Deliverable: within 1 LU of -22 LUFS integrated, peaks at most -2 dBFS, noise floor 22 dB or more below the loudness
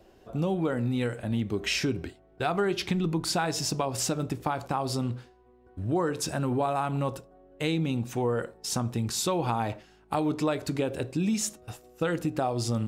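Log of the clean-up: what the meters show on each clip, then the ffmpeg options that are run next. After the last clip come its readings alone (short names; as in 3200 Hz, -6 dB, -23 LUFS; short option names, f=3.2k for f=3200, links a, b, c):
loudness -29.5 LUFS; peak -13.5 dBFS; loudness target -22.0 LUFS
-> -af "volume=7.5dB"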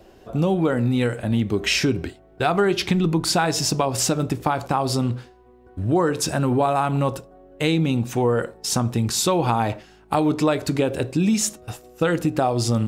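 loudness -22.0 LUFS; peak -6.0 dBFS; noise floor -51 dBFS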